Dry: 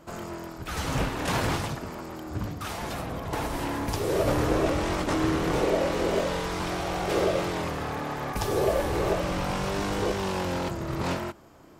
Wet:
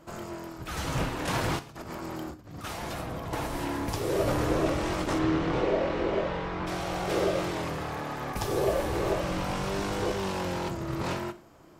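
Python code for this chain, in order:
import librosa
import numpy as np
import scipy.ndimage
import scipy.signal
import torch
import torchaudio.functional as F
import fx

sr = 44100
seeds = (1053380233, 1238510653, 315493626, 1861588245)

y = fx.over_compress(x, sr, threshold_db=-38.0, ratio=-0.5, at=(1.59, 2.64))
y = fx.lowpass(y, sr, hz=fx.line((5.18, 4700.0), (6.66, 2300.0)), slope=12, at=(5.18, 6.66), fade=0.02)
y = fx.rev_gated(y, sr, seeds[0], gate_ms=140, shape='falling', drr_db=10.5)
y = F.gain(torch.from_numpy(y), -2.5).numpy()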